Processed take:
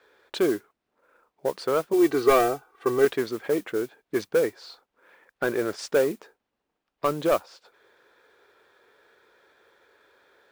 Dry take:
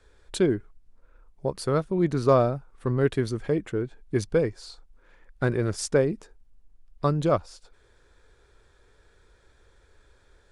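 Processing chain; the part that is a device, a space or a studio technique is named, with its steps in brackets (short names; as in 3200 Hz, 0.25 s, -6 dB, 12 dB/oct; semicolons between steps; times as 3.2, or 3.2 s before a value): carbon microphone (BPF 380–3600 Hz; soft clip -19 dBFS, distortion -13 dB; modulation noise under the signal 20 dB); 1.93–3.05 comb 2.6 ms, depth 97%; gain +5 dB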